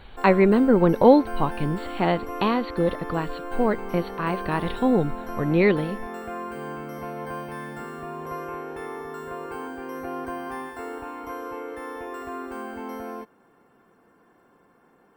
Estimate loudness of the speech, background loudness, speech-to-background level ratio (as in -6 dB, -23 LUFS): -22.5 LUFS, -35.0 LUFS, 12.5 dB